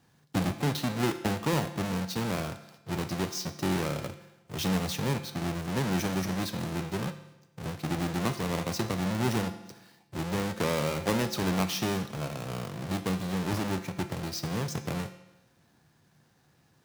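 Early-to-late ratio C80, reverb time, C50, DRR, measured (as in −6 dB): 13.5 dB, 1.0 s, 11.5 dB, 8.5 dB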